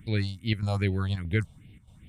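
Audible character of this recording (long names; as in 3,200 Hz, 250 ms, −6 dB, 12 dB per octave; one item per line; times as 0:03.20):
phaser sweep stages 4, 2.5 Hz, lowest notch 310–1,200 Hz
chopped level 1.6 Hz, depth 60%, duty 85%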